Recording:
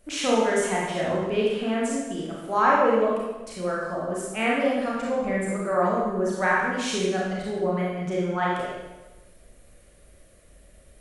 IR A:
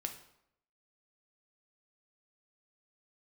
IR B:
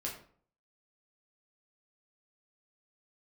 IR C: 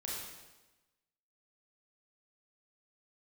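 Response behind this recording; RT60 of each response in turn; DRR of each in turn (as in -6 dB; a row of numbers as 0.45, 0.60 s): C; 0.75, 0.50, 1.1 s; 4.5, -3.0, -5.0 dB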